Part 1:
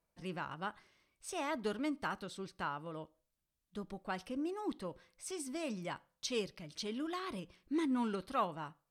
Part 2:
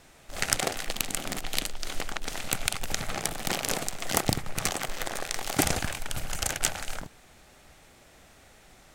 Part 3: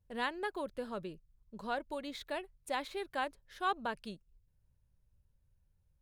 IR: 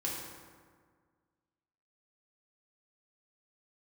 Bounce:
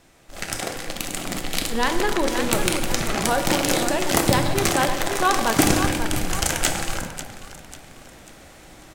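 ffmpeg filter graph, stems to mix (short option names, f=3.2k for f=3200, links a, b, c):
-filter_complex "[1:a]volume=-4.5dB,asplit=3[a][b][c];[b]volume=-5dB[d];[c]volume=-11.5dB[e];[2:a]adelay=1600,volume=1.5dB,asplit=3[f][g][h];[g]volume=-6dB[i];[h]volume=-5.5dB[j];[3:a]atrim=start_sample=2205[k];[d][i]amix=inputs=2:normalize=0[l];[l][k]afir=irnorm=-1:irlink=0[m];[e][j]amix=inputs=2:normalize=0,aecho=0:1:543|1086|1629|2172|2715|3258:1|0.4|0.16|0.064|0.0256|0.0102[n];[a][f][m][n]amix=inputs=4:normalize=0,equalizer=f=240:w=0.93:g=4,asoftclip=type=tanh:threshold=-13.5dB,dynaudnorm=f=380:g=7:m=8.5dB"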